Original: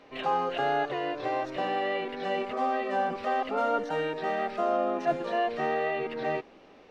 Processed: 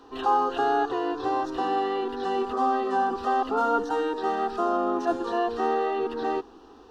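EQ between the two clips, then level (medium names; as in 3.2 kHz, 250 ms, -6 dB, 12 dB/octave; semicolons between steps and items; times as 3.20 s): peaking EQ 63 Hz +7.5 dB 1.2 oct; static phaser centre 590 Hz, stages 6; +7.0 dB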